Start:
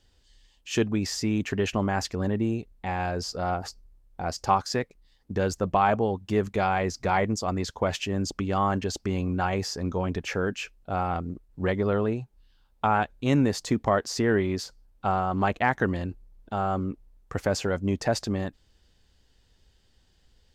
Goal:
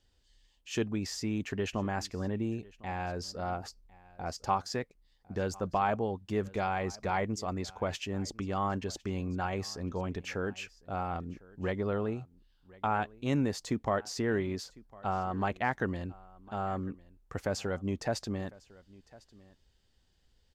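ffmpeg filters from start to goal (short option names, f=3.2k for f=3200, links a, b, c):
-af "aecho=1:1:1053:0.075,volume=-7dB"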